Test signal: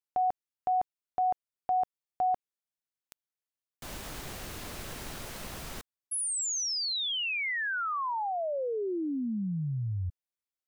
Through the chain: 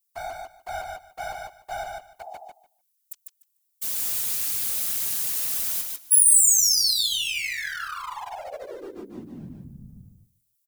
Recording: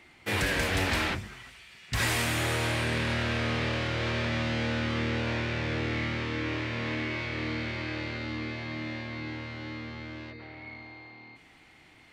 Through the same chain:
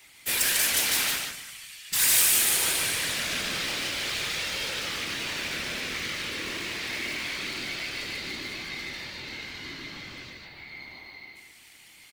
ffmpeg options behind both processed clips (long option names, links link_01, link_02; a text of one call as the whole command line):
ffmpeg -i in.wav -filter_complex "[0:a]highpass=48,highshelf=frequency=3300:gain=4,acrossover=split=160|7600[link_01][link_02][link_03];[link_01]acompressor=threshold=-47dB:ratio=6:release=463[link_04];[link_02]flanger=delay=15:depth=4.5:speed=0.22[link_05];[link_04][link_05][link_03]amix=inputs=3:normalize=0,aeval=exprs='clip(val(0),-1,0.0224)':channel_layout=same,crystalizer=i=8.5:c=0,afftfilt=real='hypot(re,im)*cos(2*PI*random(0))':imag='hypot(re,im)*sin(2*PI*random(1))':win_size=512:overlap=0.75,asplit=2[link_06][link_07];[link_07]aecho=0:1:148|296|444:0.631|0.101|0.0162[link_08];[link_06][link_08]amix=inputs=2:normalize=0" out.wav